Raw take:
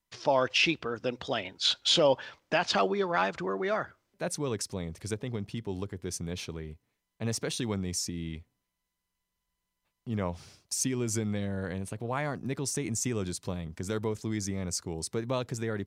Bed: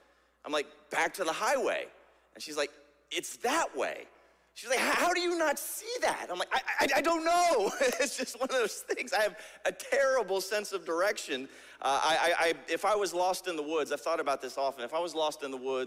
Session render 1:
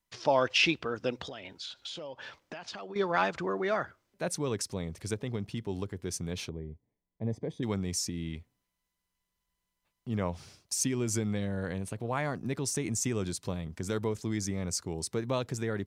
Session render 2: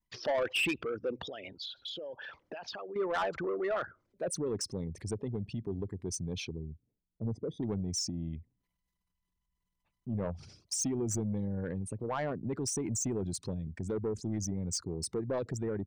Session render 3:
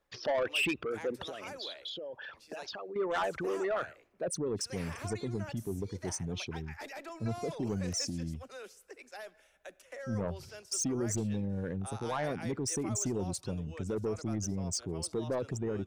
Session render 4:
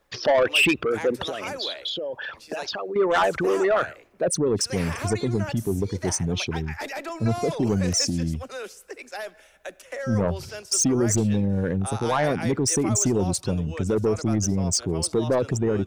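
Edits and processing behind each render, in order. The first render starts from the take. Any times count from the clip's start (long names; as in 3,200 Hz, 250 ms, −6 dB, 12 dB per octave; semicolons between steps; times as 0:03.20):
0:01.28–0:02.96: downward compressor 10 to 1, threshold −38 dBFS; 0:06.49–0:07.63: moving average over 32 samples
spectral envelope exaggerated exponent 2; soft clipping −26 dBFS, distortion −12 dB
mix in bed −17.5 dB
level +11.5 dB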